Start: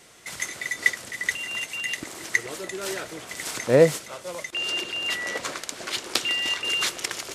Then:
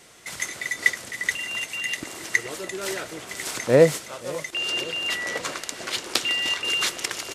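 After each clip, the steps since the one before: feedback echo 0.531 s, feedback 57%, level -19 dB; gain +1 dB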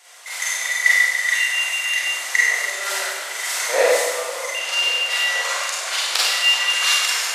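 HPF 660 Hz 24 dB/oct; Schroeder reverb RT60 1.4 s, combs from 32 ms, DRR -8 dB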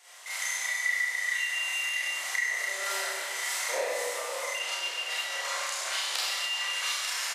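compressor 3:1, threshold -24 dBFS, peak gain reduction 10.5 dB; doubler 31 ms -2.5 dB; gain -7 dB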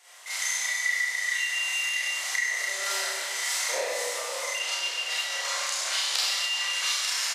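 dynamic EQ 5200 Hz, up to +6 dB, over -46 dBFS, Q 0.79

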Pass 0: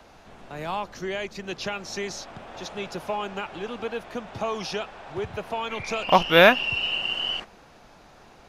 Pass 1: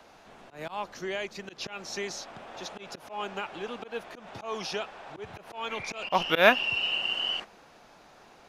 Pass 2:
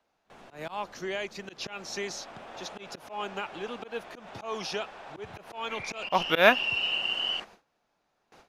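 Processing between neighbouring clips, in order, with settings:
low shelf 140 Hz -11.5 dB; auto swell 0.127 s; gain -2 dB
gate with hold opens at -43 dBFS

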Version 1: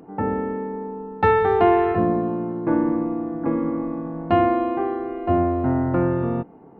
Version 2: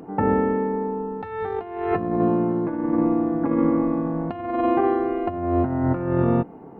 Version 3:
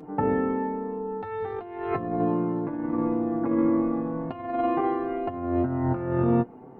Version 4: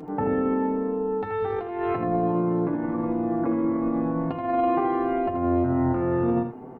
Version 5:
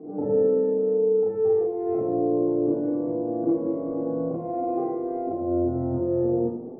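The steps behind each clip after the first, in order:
negative-ratio compressor -23 dBFS, ratio -0.5; gain +2 dB
flange 0.41 Hz, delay 6.5 ms, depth 2.7 ms, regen +36%
limiter -21.5 dBFS, peak gain reduction 9.5 dB; echo 80 ms -8 dB; gain +4.5 dB
synth low-pass 490 Hz, resonance Q 4.9; reverb RT60 1.1 s, pre-delay 33 ms, DRR -4 dB; gain -7 dB

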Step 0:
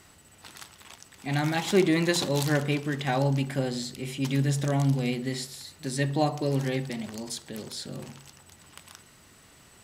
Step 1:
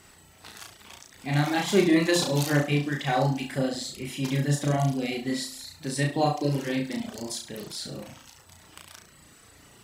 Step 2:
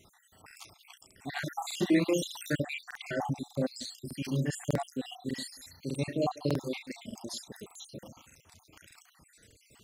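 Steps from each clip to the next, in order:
flutter echo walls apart 5.9 m, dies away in 0.74 s; reverb removal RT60 0.64 s
random spectral dropouts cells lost 62%; crackling interface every 0.60 s, samples 2048, repeat, from 0.46; gain -3.5 dB

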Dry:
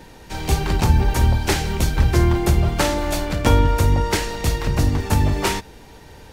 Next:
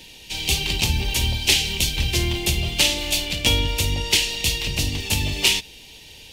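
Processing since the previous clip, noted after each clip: resonant high shelf 2000 Hz +12.5 dB, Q 3; gain -7.5 dB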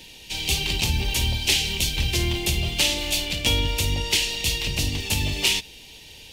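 in parallel at -3 dB: limiter -13 dBFS, peak gain reduction 11.5 dB; on the sum: companded quantiser 8-bit; gain -5.5 dB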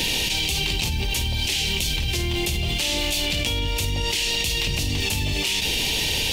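fast leveller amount 100%; gain -6 dB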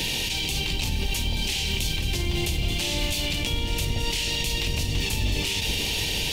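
octaver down 1 oct, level 0 dB; echo with dull and thin repeats by turns 0.44 s, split 1300 Hz, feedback 70%, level -8 dB; gain -4 dB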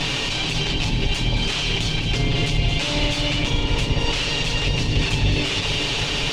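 minimum comb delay 7.1 ms; air absorption 120 m; gain +8 dB

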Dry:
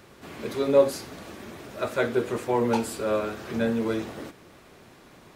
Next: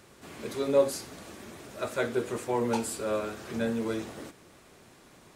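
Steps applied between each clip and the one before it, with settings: bell 8400 Hz +7 dB 1.2 oct; gain -4.5 dB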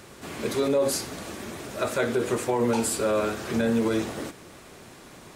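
limiter -24 dBFS, peak gain reduction 11.5 dB; gain +8.5 dB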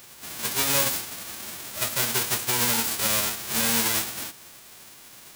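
spectral whitening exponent 0.1

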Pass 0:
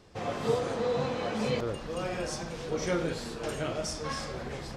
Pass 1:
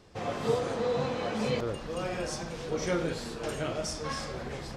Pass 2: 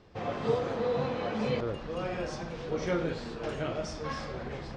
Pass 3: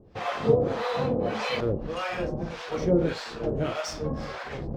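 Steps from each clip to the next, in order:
nothing audible
air absorption 140 m
in parallel at -3 dB: crossover distortion -46.5 dBFS; on the sum: harmonic tremolo 1.7 Hz, depth 100%, crossover 660 Hz; gain +6 dB

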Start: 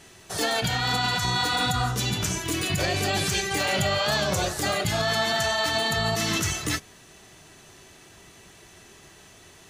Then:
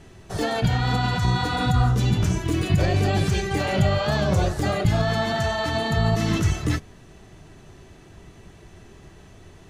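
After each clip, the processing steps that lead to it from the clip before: tilt -3 dB/oct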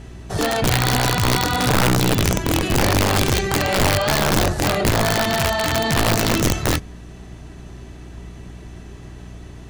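tube stage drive 17 dB, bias 0.4; hum 60 Hz, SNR 19 dB; wrapped overs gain 18 dB; gain +6.5 dB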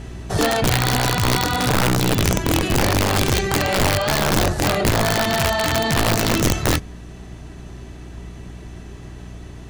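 vocal rider within 4 dB 0.5 s

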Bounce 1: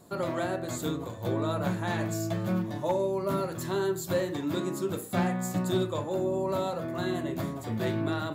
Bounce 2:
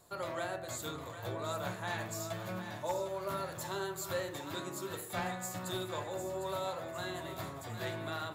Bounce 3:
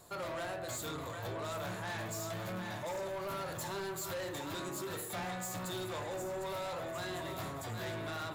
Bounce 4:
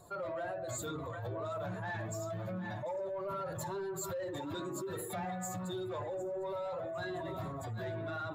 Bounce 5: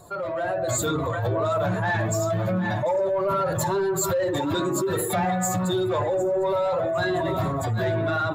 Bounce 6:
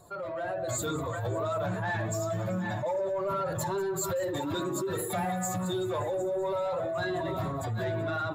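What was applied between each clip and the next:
bell 230 Hz -14.5 dB 1.9 oct; split-band echo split 700 Hz, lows 86 ms, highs 0.755 s, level -9 dB; gain -3 dB
in parallel at +1 dB: limiter -31.5 dBFS, peak gain reduction 8.5 dB; on the sum: soft clip -34.5 dBFS, distortion -10 dB; gain -1.5 dB
spectral contrast raised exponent 1.7; gain +1 dB
AGC gain up to 6 dB; gain +9 dB
thin delay 0.191 s, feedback 71%, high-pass 3100 Hz, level -17 dB; gain -7 dB

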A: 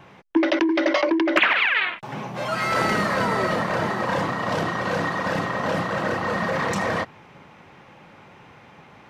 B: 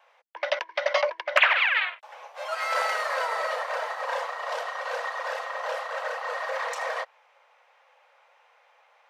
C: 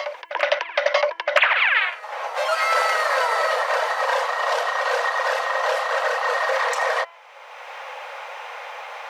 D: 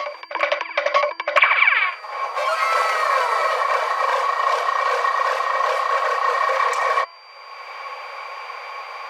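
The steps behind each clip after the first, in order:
steep high-pass 490 Hz 72 dB/oct; upward expander 1.5:1, over -37 dBFS
de-hum 338.7 Hz, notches 9; reverse echo 0.967 s -22 dB; three-band squash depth 70%; gain +7.5 dB
small resonant body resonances 300/1100/2300 Hz, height 14 dB, ringing for 45 ms; whine 4700 Hz -45 dBFS; gain -2 dB

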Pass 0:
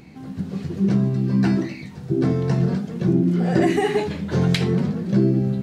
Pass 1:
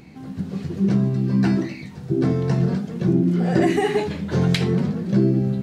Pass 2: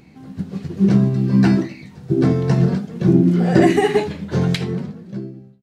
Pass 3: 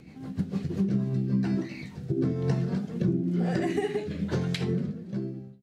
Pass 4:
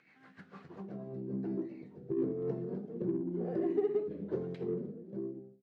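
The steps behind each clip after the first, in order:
nothing audible
ending faded out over 1.56 s; upward expander 1.5:1, over -32 dBFS; gain +6 dB
compressor 6:1, threshold -23 dBFS, peak gain reduction 14 dB; rotary speaker horn 6.7 Hz, later 1.1 Hz, at 0.36
band-pass sweep 1700 Hz -> 400 Hz, 0.38–1.32; in parallel at -10 dB: soft clip -36 dBFS, distortion -7 dB; on the sum: gain -2 dB

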